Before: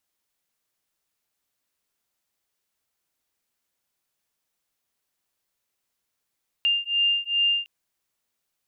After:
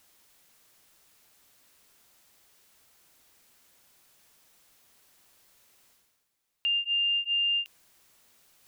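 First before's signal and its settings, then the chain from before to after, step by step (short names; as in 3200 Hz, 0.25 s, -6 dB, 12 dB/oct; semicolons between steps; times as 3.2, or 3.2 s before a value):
beating tones 2800 Hz, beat 2.5 Hz, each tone -23.5 dBFS 1.01 s
limiter -23 dBFS; reverse; upward compressor, threshold -47 dBFS; reverse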